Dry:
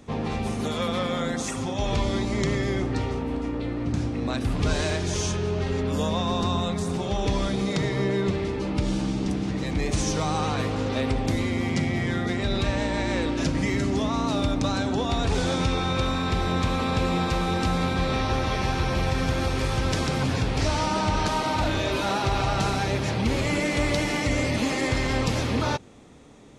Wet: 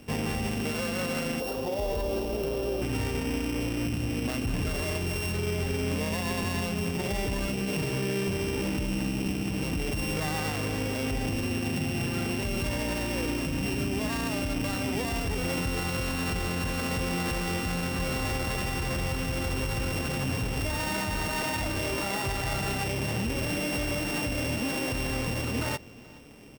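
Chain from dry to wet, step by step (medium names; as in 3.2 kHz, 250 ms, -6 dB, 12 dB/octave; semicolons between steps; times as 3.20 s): sorted samples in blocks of 16 samples; 1.40–2.82 s: ten-band graphic EQ 125 Hz -11 dB, 250 Hz -6 dB, 500 Hz +10 dB, 2 kHz -12 dB, 8 kHz -8 dB; peak limiter -21.5 dBFS, peak gain reduction 10.5 dB; on a send: delay 426 ms -23 dB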